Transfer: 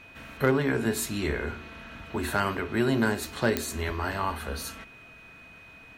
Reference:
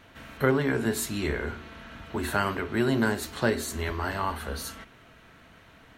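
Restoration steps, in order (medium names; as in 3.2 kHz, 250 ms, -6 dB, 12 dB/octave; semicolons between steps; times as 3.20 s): clip repair -13 dBFS; de-click; band-stop 2.5 kHz, Q 30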